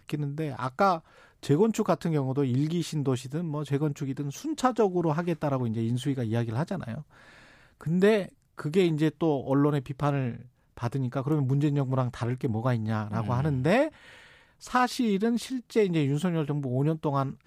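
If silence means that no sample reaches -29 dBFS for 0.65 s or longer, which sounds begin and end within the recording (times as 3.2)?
7.87–13.88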